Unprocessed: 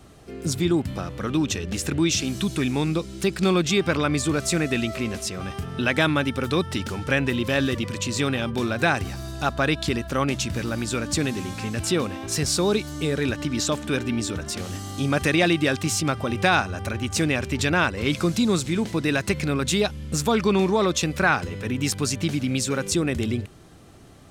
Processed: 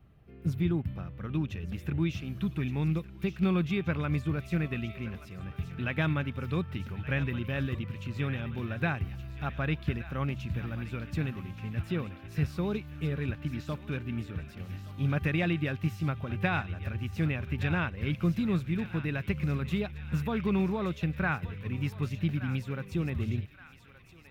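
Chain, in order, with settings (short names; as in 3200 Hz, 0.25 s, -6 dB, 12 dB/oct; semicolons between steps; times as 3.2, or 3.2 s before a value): EQ curve 160 Hz 0 dB, 280 Hz -10 dB, 720 Hz -11 dB, 2600 Hz -8 dB, 4300 Hz -20 dB, 8000 Hz -30 dB, 15000 Hz -8 dB; on a send: thinning echo 1.173 s, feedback 74%, high-pass 1100 Hz, level -10 dB; on the sum: upward expander 1.5:1, over -37 dBFS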